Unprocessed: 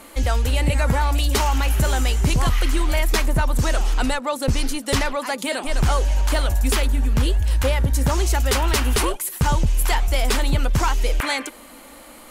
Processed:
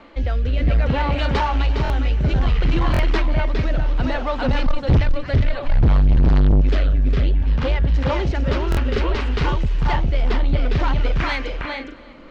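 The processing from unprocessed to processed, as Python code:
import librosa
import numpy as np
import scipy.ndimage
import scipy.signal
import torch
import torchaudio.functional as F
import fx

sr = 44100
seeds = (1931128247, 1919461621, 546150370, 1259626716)

p1 = scipy.signal.sosfilt(scipy.signal.bessel(6, 2900.0, 'lowpass', norm='mag', fs=sr, output='sos'), x)
p2 = fx.echo_multitap(p1, sr, ms=(408, 448), db=(-3.0, -8.5))
p3 = fx.rotary(p2, sr, hz=0.6)
p4 = fx.low_shelf_res(p3, sr, hz=160.0, db=12.5, q=3.0, at=(4.66, 6.61))
p5 = 10.0 ** (-13.5 / 20.0) * np.tanh(p4 / 10.0 ** (-13.5 / 20.0))
p6 = p5 + fx.echo_feedback(p5, sr, ms=336, feedback_pct=40, wet_db=-21.5, dry=0)
p7 = fx.buffer_glitch(p6, sr, at_s=(1.83, 2.92, 8.7), block=1024, repeats=2)
y = p7 * 10.0 ** (2.5 / 20.0)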